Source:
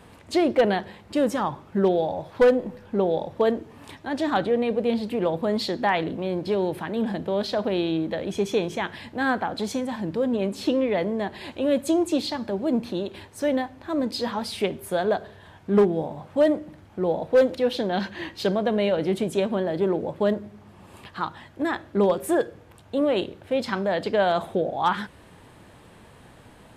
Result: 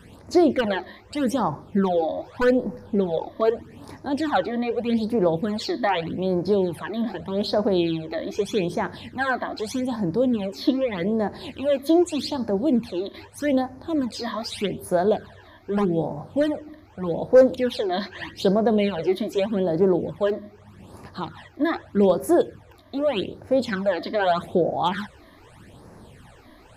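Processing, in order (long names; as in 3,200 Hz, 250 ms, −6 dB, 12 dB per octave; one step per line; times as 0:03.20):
all-pass phaser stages 12, 0.82 Hz, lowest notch 140–3,200 Hz
level +3.5 dB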